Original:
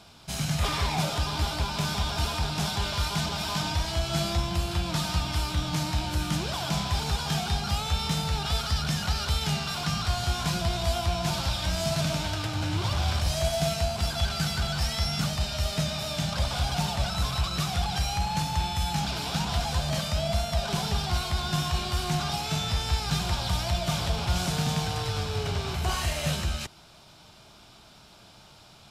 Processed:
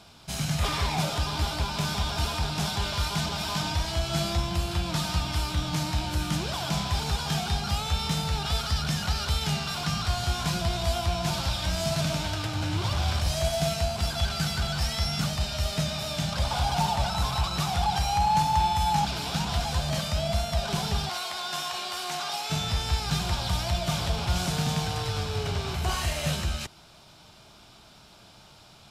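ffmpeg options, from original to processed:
-filter_complex "[0:a]asettb=1/sr,asplit=3[s0][s1][s2];[s0]atrim=end=16.454[s3];[s1]atrim=start=16.45:end=19.05,asetpts=PTS-STARTPTS,afade=t=in:d=0.004:c=qsin,afade=t=out:st=2.596:d=0.004:c=qsin,equalizer=f=870:t=o:w=0.42:g=9.5[s4];[s2]atrim=start=19.046[s5];[s3][s4]acrossfade=d=0.004:c1=hsin:c2=qsin[s6];[s6][s5]acrossfade=d=0.004:c1=qsin:c2=hsin,asettb=1/sr,asplit=3[s7][s8][s9];[s7]atrim=end=21.094[s10];[s8]atrim=start=21.09:end=22.5,asetpts=PTS-STARTPTS,afade=t=in:d=0.004:c=qsin,afade=t=out:st=1.406:d=0.004:c=qsin,highpass=500[s11];[s9]atrim=start=22.496[s12];[s10][s11]acrossfade=d=0.004:c1=hsin:c2=qsin[s13];[s13][s12]acrossfade=d=0.004:c1=qsin:c2=hsin"

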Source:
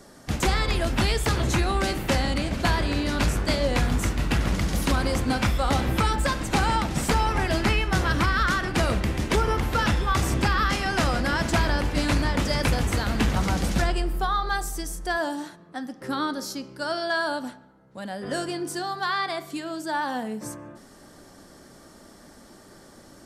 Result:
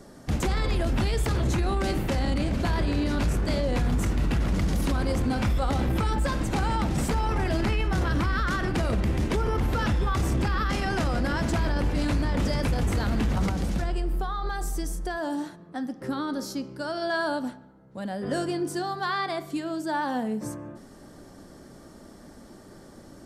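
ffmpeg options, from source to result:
-filter_complex "[0:a]asettb=1/sr,asplit=3[s0][s1][s2];[s0]atrim=end=13.494[s3];[s1]atrim=start=13.49:end=17.02,asetpts=PTS-STARTPTS,afade=t=in:d=0.004:c=qsin,afade=t=out:st=3.526:d=0.004:c=qsin,acompressor=threshold=0.0501:ratio=6:attack=3.2:release=140:knee=1:detection=peak[s4];[s2]atrim=start=17.016[s5];[s3][s4]acrossfade=d=0.004:c1=hsin:c2=qsin[s6];[s6][s5]acrossfade=d=0.004:c1=qsin:c2=hsin,tiltshelf=f=710:g=4,alimiter=limit=0.126:level=0:latency=1:release=11"

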